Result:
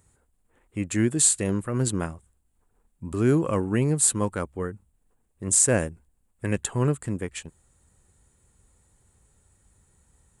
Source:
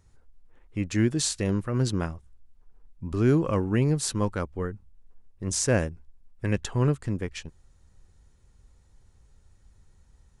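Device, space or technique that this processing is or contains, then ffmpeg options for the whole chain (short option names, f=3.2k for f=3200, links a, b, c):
budget condenser microphone: -af "highpass=f=110:p=1,highshelf=f=6.7k:t=q:w=3:g=6.5,volume=1.5dB"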